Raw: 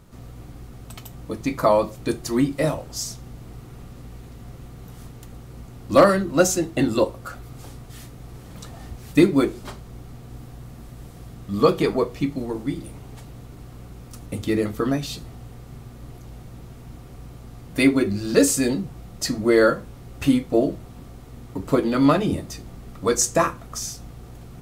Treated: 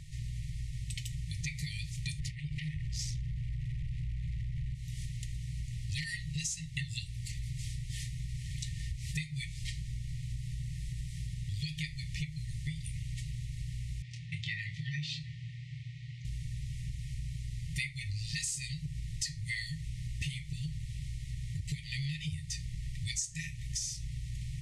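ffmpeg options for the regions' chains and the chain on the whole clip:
-filter_complex "[0:a]asettb=1/sr,asplit=3[s0][s1][s2];[s0]atrim=end=2.194[s3];[s1]atrim=start=2.19:end=4.75,asetpts=PTS-STARTPTS,afade=t=in:d=0.004:c=qsin,afade=t=out:st=2.556:d=0.004:c=qsin,bass=f=250:g=3,treble=f=4000:g=-14,acompressor=threshold=0.0178:ratio=10:attack=3.2:release=140:knee=1:detection=peak,aeval=exprs='0.0422*sin(PI/2*2.51*val(0)/0.0422)':c=same[s4];[s2]atrim=start=4.746[s5];[s3][s4]acrossfade=d=0.004:c1=hsin:c2=qsin[s6];[s6][s5]acrossfade=d=0.004:c1=qsin:c2=hsin,asettb=1/sr,asplit=3[s7][s8][s9];[s7]atrim=end=14.024[s10];[s8]atrim=start=14.02:end=16.25,asetpts=PTS-STARTPTS,afade=t=in:d=0.004:c=qsin,afade=t=out:st=2.226:d=0.004:c=qsin,highpass=180,lowpass=4500,aemphasis=mode=reproduction:type=cd,asplit=2[s11][s12];[s12]adelay=26,volume=0.447[s13];[s11][s13]amix=inputs=2:normalize=0,atrim=end_sample=98343[s14];[s9]atrim=start=16.246[s15];[s10][s14]acrossfade=d=0.004:c1=hsin:c2=qsin[s16];[s16][s15]acrossfade=d=0.004:c1=qsin:c2=hsin,lowpass=f=9700:w=0.5412,lowpass=f=9700:w=1.3066,afftfilt=real='re*(1-between(b*sr/4096,170,1800))':imag='im*(1-between(b*sr/4096,170,1800))':win_size=4096:overlap=0.75,acompressor=threshold=0.0126:ratio=10,volume=1.68"

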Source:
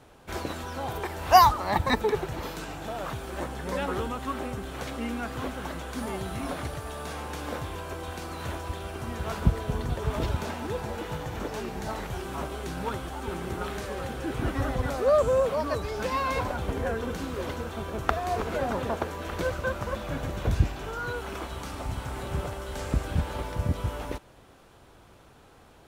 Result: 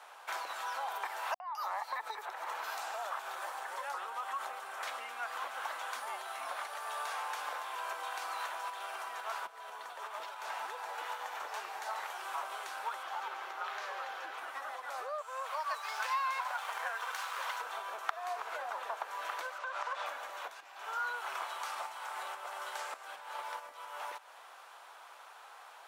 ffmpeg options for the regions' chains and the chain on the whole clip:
-filter_complex "[0:a]asettb=1/sr,asplit=3[s0][s1][s2];[s0]atrim=end=1.344[s3];[s1]atrim=start=1.34:end=4.83,asetpts=PTS-STARTPTS,afade=t=in:d=0.004:c=qsin,afade=t=out:st=3.486:d=0.004:c=qsin,acompressor=threshold=0.0224:ratio=12:attack=3.2:release=140:knee=1:detection=peak,acrossover=split=200|2800[s4][s5][s6];[s5]adelay=60[s7];[s6]adelay=210[s8];[s4][s7][s8]amix=inputs=3:normalize=0,atrim=end_sample=153909[s9];[s2]atrim=start=4.826[s10];[s3][s9]acrossfade=d=0.004:c1=hsin:c2=qsin[s11];[s11][s10]acrossfade=d=0.004:c1=qsin:c2=hsin,asettb=1/sr,asplit=3[s12][s13][s14];[s12]atrim=end=13.034[s15];[s13]atrim=start=13.03:end=14.38,asetpts=PTS-STARTPTS,afade=t=in:d=0.004:c=qsin,afade=t=out:st=1.346:d=0.004:c=qsin,acrossover=split=7200[s16][s17];[s17]acompressor=threshold=0.00112:ratio=4:attack=1:release=60[s18];[s16][s18]amix=inputs=2:normalize=0,equalizer=f=8700:t=o:w=0.43:g=-8[s19];[s14]atrim=start=14.376[s20];[s15][s19]acrossfade=d=0.004:c1=hsin:c2=qsin[s21];[s21][s20]acrossfade=d=0.004:c1=qsin:c2=hsin,asettb=1/sr,asplit=3[s22][s23][s24];[s22]atrim=end=15.214[s25];[s23]atrim=start=15.21:end=17.61,asetpts=PTS-STARTPTS,afade=t=in:d=0.004:c=qsin,afade=t=out:st=2.396:d=0.004:c=qsin,highpass=810,aeval=exprs='sgn(val(0))*max(abs(val(0))-0.00237,0)':c=same[s26];[s24]atrim=start=17.606[s27];[s25][s26]acrossfade=d=0.004:c1=hsin:c2=qsin[s28];[s28][s27]acrossfade=d=0.004:c1=qsin:c2=hsin,asettb=1/sr,asplit=3[s29][s30][s31];[s29]atrim=end=19.584[s32];[s30]atrim=start=19.58:end=20.06,asetpts=PTS-STARTPTS,afade=t=in:d=0.004:c=qsin,afade=t=out:st=0.476:d=0.004:c=qsin,highpass=360,lowpass=6900,acompressor=threshold=0.02:ratio=6:attack=3.2:release=140:knee=1:detection=peak[s33];[s31]atrim=start=20.056[s34];[s32][s33]acrossfade=d=0.004:c1=hsin:c2=qsin[s35];[s35][s34]acrossfade=d=0.004:c1=qsin:c2=hsin,acompressor=threshold=0.0141:ratio=8,highpass=f=870:w=0.5412,highpass=f=870:w=1.3066,tiltshelf=f=1300:g=5.5,volume=2.24"

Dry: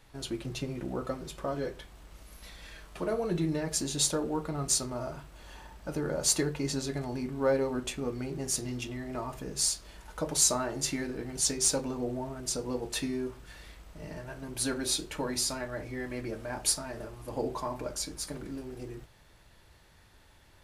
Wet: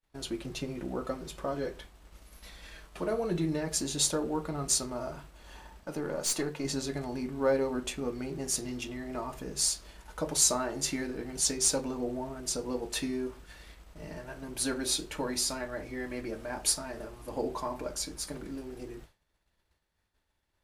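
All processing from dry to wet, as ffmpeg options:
-filter_complex "[0:a]asettb=1/sr,asplit=3[s0][s1][s2];[s0]atrim=end=5.834[s3];[s1]atrim=start=5.83:end=6.65,asetpts=PTS-STARTPTS,afade=t=in:d=0.004:c=qsin,afade=t=out:st=0.816:d=0.004:c=qsin,highpass=150,aeval=exprs='(tanh(15.8*val(0)+0.35)-tanh(0.35))/15.8':c=same[s4];[s2]atrim=start=6.646[s5];[s3][s4]acrossfade=d=0.004:c1=hsin:c2=qsin[s6];[s6][s5]acrossfade=d=0.004:c1=qsin:c2=hsin,agate=range=0.0224:threshold=0.00501:ratio=3:detection=peak,equalizer=f=120:t=o:w=0.34:g=-8"

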